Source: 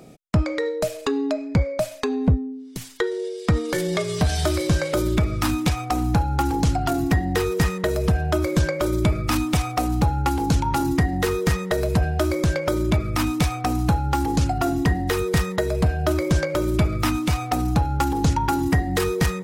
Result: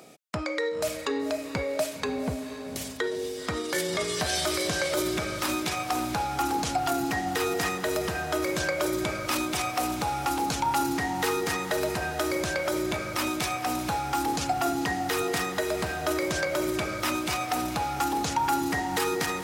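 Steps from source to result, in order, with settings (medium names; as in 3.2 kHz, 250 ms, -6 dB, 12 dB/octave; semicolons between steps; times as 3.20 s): high-pass 840 Hz 6 dB/octave; peak limiter -18.5 dBFS, peak gain reduction 8 dB; on a send: echo that smears into a reverb 506 ms, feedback 49%, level -9 dB; on the sum: trim +2.5 dB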